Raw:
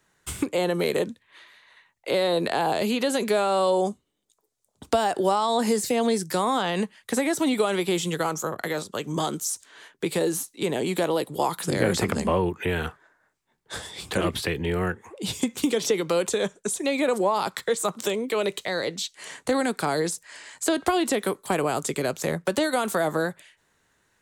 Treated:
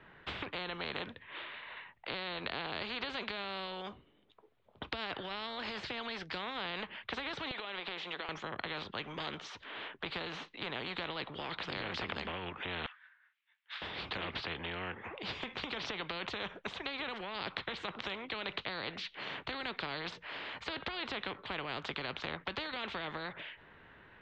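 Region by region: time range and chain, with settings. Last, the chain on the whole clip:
0:07.51–0:08.29: high-pass filter 390 Hz 24 dB per octave + downward compressor 5 to 1, threshold −31 dBFS
0:12.86–0:13.82: Bessel high-pass filter 2,700 Hz, order 4 + spectral tilt −1.5 dB per octave
whole clip: Butterworth low-pass 3,200 Hz 36 dB per octave; brickwall limiter −16.5 dBFS; every bin compressed towards the loudest bin 4 to 1; level −2 dB

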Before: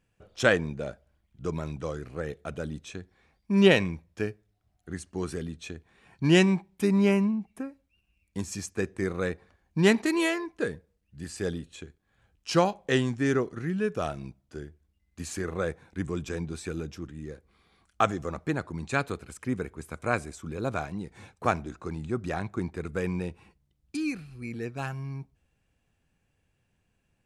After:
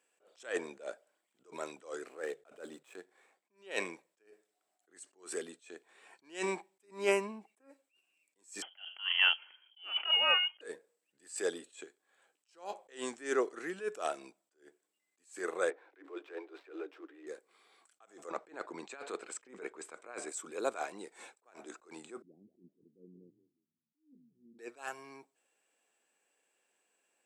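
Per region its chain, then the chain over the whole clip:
0:02.09–0:03.51: running median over 9 samples + mains-hum notches 50/100/150 Hz
0:08.62–0:10.61: voice inversion scrambler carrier 3,200 Hz + compressor whose output falls as the input rises −27 dBFS, ratio −0.5
0:15.70–0:17.27: gap after every zero crossing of 0.073 ms + Chebyshev high-pass filter 280 Hz, order 10 + high-frequency loss of the air 330 metres
0:18.30–0:20.29: compressor whose output falls as the input rises −33 dBFS, ratio −0.5 + high-frequency loss of the air 96 metres
0:22.22–0:24.59: inverse Chebyshev low-pass filter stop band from 1,300 Hz, stop band 80 dB + low-shelf EQ 82 Hz −11 dB + echo with shifted repeats 177 ms, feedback 47%, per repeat −63 Hz, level −8.5 dB
whole clip: high-pass filter 370 Hz 24 dB per octave; parametric band 7,900 Hz +14 dB 0.22 octaves; level that may rise only so fast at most 180 dB per second

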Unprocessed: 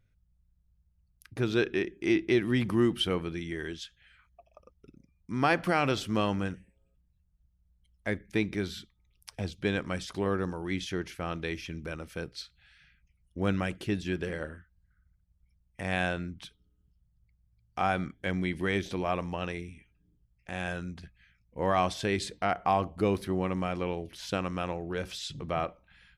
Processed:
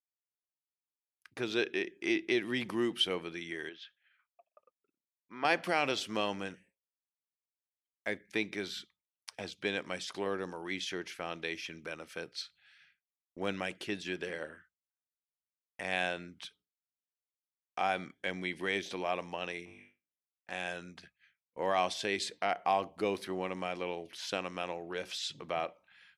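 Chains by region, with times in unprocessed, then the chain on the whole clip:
0:03.69–0:05.45: high-pass filter 520 Hz 6 dB per octave + high-frequency loss of the air 310 metres
0:19.65–0:20.51: low-pass filter 2,100 Hz 6 dB per octave + hard clipping −37 dBFS + flutter between parallel walls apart 3.5 metres, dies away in 0.61 s
whole clip: meter weighting curve A; downward expander −56 dBFS; dynamic equaliser 1,300 Hz, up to −7 dB, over −46 dBFS, Q 1.7

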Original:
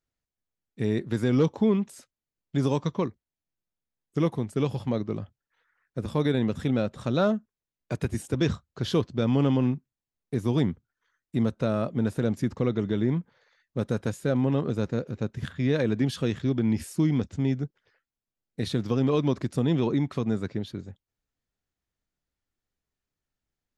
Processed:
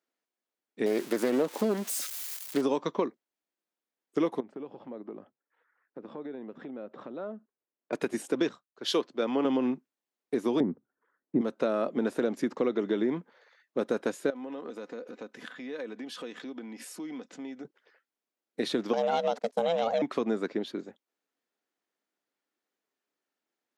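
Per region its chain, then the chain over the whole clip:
0:00.86–0:02.62: spike at every zero crossing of −26.5 dBFS + highs frequency-modulated by the lows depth 0.43 ms
0:04.40–0:07.93: head-to-tape spacing loss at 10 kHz 37 dB + downward compressor 8 to 1, threshold −37 dBFS
0:08.49–0:09.45: low-shelf EQ 280 Hz −9 dB + multiband upward and downward expander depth 100%
0:10.60–0:11.41: low-pass filter 1,500 Hz + spectral tilt −4 dB per octave
0:14.30–0:17.65: low-shelf EQ 330 Hz −8 dB + comb filter 4 ms, depth 39% + downward compressor 5 to 1, threshold −39 dBFS
0:18.93–0:20.02: noise gate −38 dBFS, range −26 dB + high-shelf EQ 3,800 Hz +11.5 dB + ring modulation 340 Hz
whole clip: high-pass filter 270 Hz 24 dB per octave; high-shelf EQ 3,700 Hz −7.5 dB; downward compressor, threshold −28 dBFS; level +5 dB

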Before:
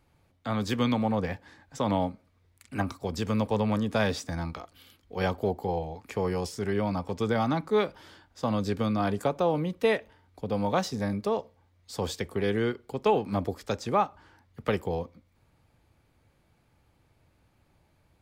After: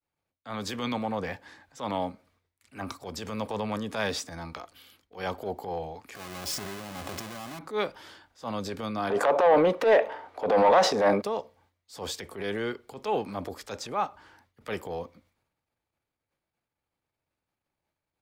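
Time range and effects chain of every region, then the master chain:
0:06.15–0:07.59: each half-wave held at its own peak + compressor whose output falls as the input rises −33 dBFS + notch comb filter 460 Hz
0:09.10–0:11.22: parametric band 610 Hz +14.5 dB 2.1 octaves + downward compressor 10 to 1, threshold −15 dBFS + mid-hump overdrive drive 18 dB, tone 2,100 Hz, clips at −7.5 dBFS
whole clip: transient designer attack −9 dB, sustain +4 dB; low-shelf EQ 250 Hz −10.5 dB; downward expander −60 dBFS

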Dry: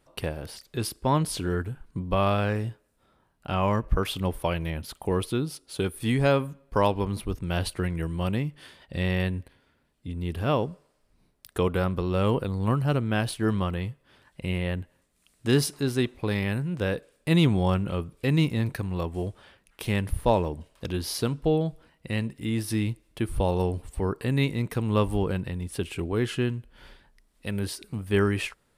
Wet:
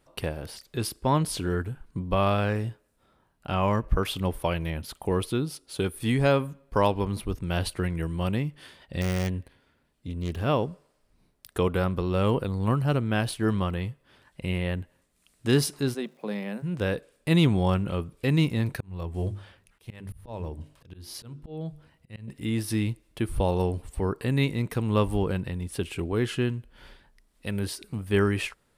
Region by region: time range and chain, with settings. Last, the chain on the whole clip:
0:09.01–0:10.42: phase distortion by the signal itself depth 0.3 ms + de-essing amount 65%
0:15.93–0:16.62: Chebyshev high-pass with heavy ripple 150 Hz, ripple 9 dB + surface crackle 570 per second −57 dBFS
0:18.80–0:22.28: parametric band 100 Hz +7.5 dB 1.2 octaves + mains-hum notches 50/100/150/200/250/300/350/400 Hz + volume swells 512 ms
whole clip: no processing

